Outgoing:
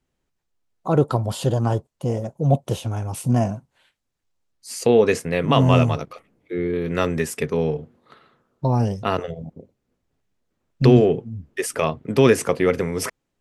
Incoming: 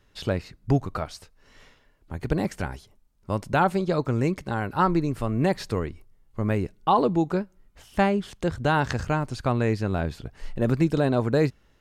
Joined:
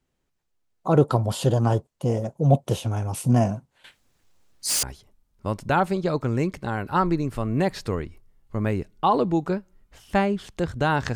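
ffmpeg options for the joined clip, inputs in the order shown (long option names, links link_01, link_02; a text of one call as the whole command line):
ffmpeg -i cue0.wav -i cue1.wav -filter_complex "[0:a]asettb=1/sr,asplit=3[link_01][link_02][link_03];[link_01]atrim=end=3.844[link_04];[link_02]atrim=start=3.84:end=4.83,asetpts=PTS-STARTPTS,afade=type=in:duration=0.004:curve=qsin,afade=type=out:start_time=0.986:duration=0.004:curve=qsin,aeval=exprs='0.106*sin(PI/2*3.16*val(0)/0.106)':channel_layout=same[link_05];[link_03]atrim=start=4.826[link_06];[link_04][link_05]acrossfade=duration=0.004:curve1=hsin:curve2=qsin[link_07];[link_07][link_06]acrossfade=duration=0.004:curve1=qsin:curve2=hsin,apad=whole_dur=11.15,atrim=end=11.15,atrim=end=4.832[link_08];[1:a]atrim=start=2.668:end=8.99[link_09];[link_08][link_09]acrossfade=duration=0.004:curve1=hsin:curve2=hsin" out.wav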